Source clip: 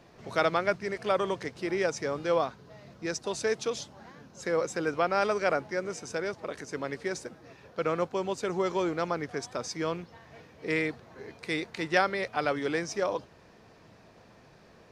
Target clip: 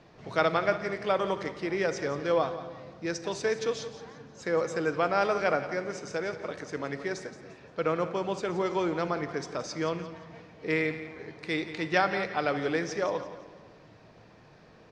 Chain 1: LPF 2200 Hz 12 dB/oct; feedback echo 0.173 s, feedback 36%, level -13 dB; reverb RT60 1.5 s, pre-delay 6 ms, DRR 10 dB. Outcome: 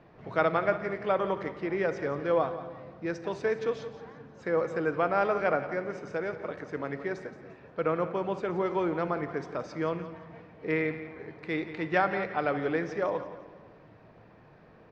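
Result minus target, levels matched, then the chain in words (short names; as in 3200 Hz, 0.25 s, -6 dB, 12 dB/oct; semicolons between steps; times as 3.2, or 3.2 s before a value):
8000 Hz band -15.0 dB
LPF 5800 Hz 12 dB/oct; feedback echo 0.173 s, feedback 36%, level -13 dB; reverb RT60 1.5 s, pre-delay 6 ms, DRR 10 dB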